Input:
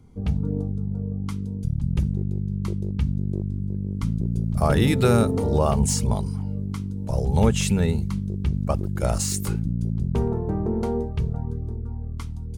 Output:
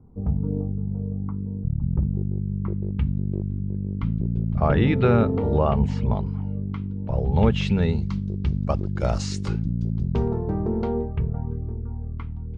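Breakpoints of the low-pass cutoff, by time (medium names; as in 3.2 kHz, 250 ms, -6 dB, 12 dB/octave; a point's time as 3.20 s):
low-pass 24 dB/octave
2.45 s 1.1 kHz
2.97 s 3 kHz
7.19 s 3 kHz
8.07 s 5.3 kHz
10.70 s 5.3 kHz
11.10 s 2.5 kHz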